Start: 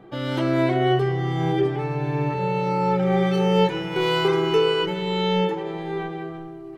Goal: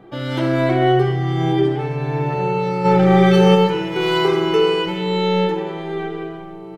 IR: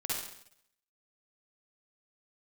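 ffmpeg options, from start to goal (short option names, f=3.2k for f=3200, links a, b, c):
-filter_complex "[0:a]asplit=2[a][b];[b]adelay=1516,volume=-18dB,highshelf=f=4k:g=-34.1[c];[a][c]amix=inputs=2:normalize=0,asplit=3[d][e][f];[d]afade=t=out:st=2.84:d=0.02[g];[e]acontrast=68,afade=t=in:st=2.84:d=0.02,afade=t=out:st=3.54:d=0.02[h];[f]afade=t=in:st=3.54:d=0.02[i];[g][h][i]amix=inputs=3:normalize=0,asplit=2[j][k];[1:a]atrim=start_sample=2205[l];[k][l]afir=irnorm=-1:irlink=0,volume=-7dB[m];[j][m]amix=inputs=2:normalize=0"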